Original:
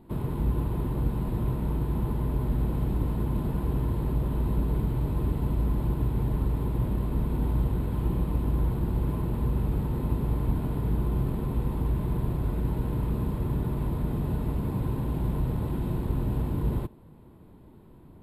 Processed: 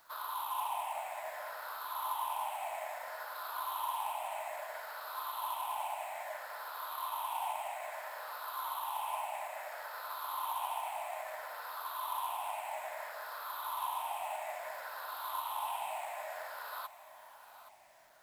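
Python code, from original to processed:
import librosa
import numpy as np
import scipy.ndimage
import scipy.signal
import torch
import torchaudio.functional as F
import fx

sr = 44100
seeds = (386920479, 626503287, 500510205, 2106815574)

y = fx.spec_ripple(x, sr, per_octave=0.58, drift_hz=-0.6, depth_db=16)
y = scipy.signal.sosfilt(scipy.signal.butter(12, 640.0, 'highpass', fs=sr, output='sos'), y)
y = fx.quant_companded(y, sr, bits=6)
y = y + 10.0 ** (-14.5 / 20.0) * np.pad(y, (int(822 * sr / 1000.0), 0))[:len(y)]
y = y * librosa.db_to_amplitude(3.0)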